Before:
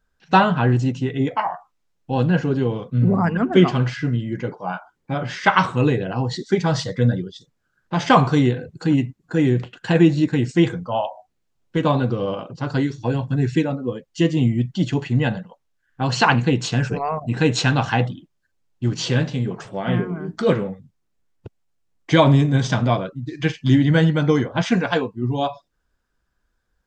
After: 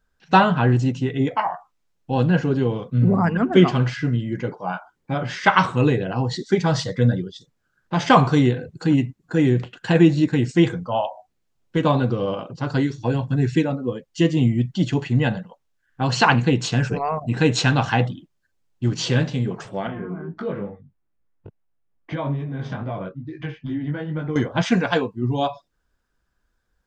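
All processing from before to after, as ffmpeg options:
-filter_complex "[0:a]asettb=1/sr,asplit=3[a][b][c];[a]atrim=end=19.874[d];[b]atrim=start=19.87:end=24.36,asetpts=PTS-STARTPTS,afade=t=in:d=0.004:c=qsin,afade=t=out:st=4.486:d=0.004:c=qsin,lowpass=2.1k,acompressor=threshold=-21dB:ratio=4:attack=3.2:release=140:knee=1:detection=peak,flanger=delay=18.5:depth=3:speed=2.3[e];[c]atrim=start=24.356[f];[d][e]acrossfade=d=0.004:c1=hsin:c2=qsin[g];[g][f]acrossfade=d=0.004:c1=qsin:c2=hsin"

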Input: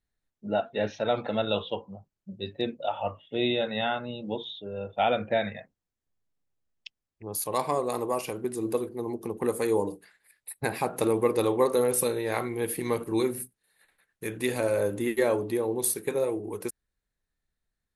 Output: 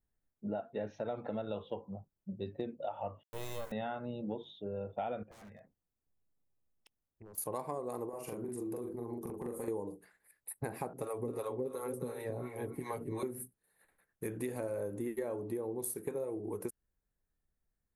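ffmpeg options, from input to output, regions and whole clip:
-filter_complex "[0:a]asettb=1/sr,asplit=3[a][b][c];[a]atrim=end=3.234[d];[b]atrim=start=3.23:end=3.72,asetpts=PTS-STARTPTS,afade=t=in:d=0.004:c=qsin,afade=t=out:st=0.486:d=0.004:c=qsin,highpass=f=510:w=0.5412,highpass=f=510:w=1.3066,acrusher=bits=4:dc=4:mix=0:aa=0.000001[e];[c]atrim=start=3.716[f];[d][e]acrossfade=d=0.004:c1=hsin:c2=qsin[g];[g][f]acrossfade=d=0.004:c1=qsin:c2=hsin,asettb=1/sr,asplit=3[h][i][j];[h]atrim=end=5.234[k];[i]atrim=start=5.23:end=7.38,asetpts=PTS-STARTPTS,afade=t=in:d=0.004:c=qsin,afade=t=out:st=2.146:d=0.004:c=qsin,aeval=exprs='0.0266*(abs(mod(val(0)/0.0266+3,4)-2)-1)':c=same,acompressor=threshold=-48dB:ratio=16:attack=3.2:release=140:knee=1:detection=peak[l];[j]atrim=start=7.376[m];[k][l]acrossfade=d=0.004:c1=hsin:c2=qsin[n];[n][m]acrossfade=d=0.004:c1=qsin:c2=hsin,asettb=1/sr,asplit=3[o][p][q];[o]atrim=end=8.094[r];[p]atrim=start=8.09:end=9.68,asetpts=PTS-STARTPTS,afade=t=in:d=0.004:c=qsin,afade=t=out:st=1.586:d=0.004:c=qsin,acompressor=threshold=-37dB:ratio=6:attack=3.2:release=140:knee=1:detection=peak,aeval=exprs='0.0335*(abs(mod(val(0)/0.0335+3,4)-2)-1)':c=same,asplit=2[s][t];[t]adelay=42,volume=-2dB[u];[s][u]amix=inputs=2:normalize=0,atrim=end_sample=70119[v];[q]atrim=start=9.676[w];[r][v]acrossfade=d=0.004:c1=hsin:c2=qsin[x];[x][w]acrossfade=d=0.004:c1=qsin:c2=hsin,asettb=1/sr,asplit=3[y][z][aa];[y]atrim=end=10.934[ab];[z]atrim=start=10.93:end=13.23,asetpts=PTS-STARTPTS,afade=t=in:d=0.004:c=qsin,afade=t=out:st=2.296:d=0.004:c=qsin,acrossover=split=530[ac][ad];[ac]aeval=exprs='val(0)*(1-1/2+1/2*cos(2*PI*2.8*n/s))':c=same[ae];[ad]aeval=exprs='val(0)*(1-1/2-1/2*cos(2*PI*2.8*n/s))':c=same[af];[ae][af]amix=inputs=2:normalize=0,aecho=1:1:7.3:0.58,atrim=end_sample=101430,aecho=1:1:266:0.282,atrim=end_sample=101430[ag];[aa]atrim=start=13.226[ah];[ab][ag]acrossfade=d=0.004:c1=hsin:c2=qsin[ai];[ai][ah]acrossfade=d=0.004:c1=qsin:c2=hsin,equalizer=f=3.7k:w=0.58:g=-14,acompressor=threshold=-35dB:ratio=6"

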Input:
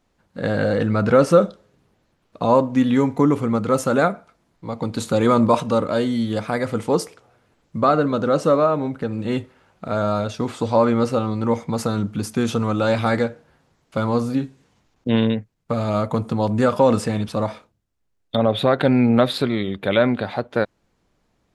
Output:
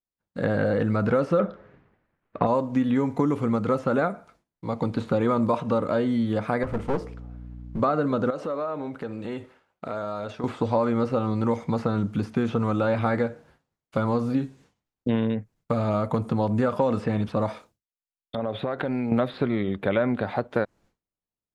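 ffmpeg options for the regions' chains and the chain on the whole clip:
-filter_complex "[0:a]asettb=1/sr,asplit=3[a][b][c];[a]atrim=end=1.394[d];[b]atrim=start=1.39:end=2.47,asetpts=PTS-STARTPTS,afade=t=in:d=0.004:c=qsin,afade=t=out:st=1.076:d=0.004:c=qsin,lowpass=f=1.9k:t=q:w=1.8,acontrast=55[e];[c]atrim=start=2.466[f];[d][e]acrossfade=d=0.004:c1=hsin:c2=qsin[g];[g][f]acrossfade=d=0.004:c1=qsin:c2=hsin,asettb=1/sr,asplit=3[h][i][j];[h]atrim=end=6.634[k];[i]atrim=start=6.63:end=7.8,asetpts=PTS-STARTPTS,afade=t=in:d=0.004:c=qsin,afade=t=out:st=1.166:d=0.004:c=qsin,lowpass=f=1.5k:p=1,aeval=exprs='val(0)+0.0126*(sin(2*PI*60*n/s)+sin(2*PI*2*60*n/s)/2+sin(2*PI*3*60*n/s)/3+sin(2*PI*4*60*n/s)/4+sin(2*PI*5*60*n/s)/5)':c=same,aeval=exprs='clip(val(0),-1,0.0316)':c=same[l];[j]atrim=start=7.796[m];[k][l]acrossfade=d=0.004:c1=hsin:c2=qsin[n];[n][m]acrossfade=d=0.004:c1=qsin:c2=hsin,asettb=1/sr,asplit=3[o][p][q];[o]atrim=end=8.304[r];[p]atrim=start=8.3:end=10.44,asetpts=PTS-STARTPTS,afade=t=in:d=0.004:c=qsin,afade=t=out:st=2.136:d=0.004:c=qsin,acompressor=threshold=-25dB:ratio=6:attack=3.2:release=140:knee=1:detection=peak,bass=f=250:g=-8,treble=f=4k:g=-4[s];[q]atrim=start=10.436[t];[r][s]acrossfade=d=0.004:c1=hsin:c2=qsin[u];[u][t]acrossfade=d=0.004:c1=qsin:c2=hsin,asettb=1/sr,asplit=3[v][w][x];[v]atrim=end=17.494[y];[w]atrim=start=17.49:end=19.12,asetpts=PTS-STARTPTS,afade=t=in:d=0.004:c=qsin,afade=t=out:st=1.626:d=0.004:c=qsin,bass=f=250:g=-4,treble=f=4k:g=7,acompressor=threshold=-22dB:ratio=10:attack=3.2:release=140:knee=1:detection=peak[z];[x]atrim=start=19.116[aa];[y][z]acrossfade=d=0.004:c1=hsin:c2=qsin[ab];[ab][aa]acrossfade=d=0.004:c1=qsin:c2=hsin,acrossover=split=4000[ac][ad];[ad]acompressor=threshold=-53dB:ratio=4:attack=1:release=60[ae];[ac][ae]amix=inputs=2:normalize=0,agate=range=-33dB:threshold=-48dB:ratio=3:detection=peak,acrossover=split=2500|5100[af][ag][ah];[af]acompressor=threshold=-20dB:ratio=4[ai];[ag]acompressor=threshold=-55dB:ratio=4[aj];[ah]acompressor=threshold=-59dB:ratio=4[ak];[ai][aj][ak]amix=inputs=3:normalize=0"

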